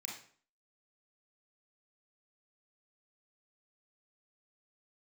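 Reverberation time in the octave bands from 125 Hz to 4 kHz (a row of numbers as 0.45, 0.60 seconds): 0.50, 0.55, 0.50, 0.50, 0.45, 0.40 seconds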